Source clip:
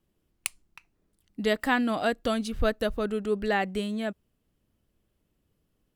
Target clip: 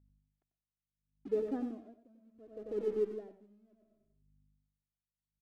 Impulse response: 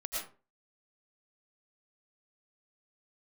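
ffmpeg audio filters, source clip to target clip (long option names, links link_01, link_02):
-filter_complex "[0:a]agate=range=-33dB:threshold=-56dB:ratio=3:detection=peak,acompressor=mode=upward:threshold=-33dB:ratio=2.5,asuperpass=centerf=270:order=4:qfactor=1,aeval=exprs='sgn(val(0))*max(abs(val(0))-0.00266,0)':channel_layout=same,flanger=delay=2.2:depth=1.1:regen=-11:speed=0.65:shape=triangular,aeval=exprs='val(0)+0.000355*(sin(2*PI*50*n/s)+sin(2*PI*2*50*n/s)/2+sin(2*PI*3*50*n/s)/3+sin(2*PI*4*50*n/s)/4+sin(2*PI*5*50*n/s)/5)':channel_layout=same,atempo=1.1,aecho=1:1:93|186|279:0.473|0.118|0.0296,asplit=2[link_01][link_02];[1:a]atrim=start_sample=2205[link_03];[link_02][link_03]afir=irnorm=-1:irlink=0,volume=-10dB[link_04];[link_01][link_04]amix=inputs=2:normalize=0,aeval=exprs='val(0)*pow(10,-31*(0.5-0.5*cos(2*PI*0.69*n/s))/20)':channel_layout=same"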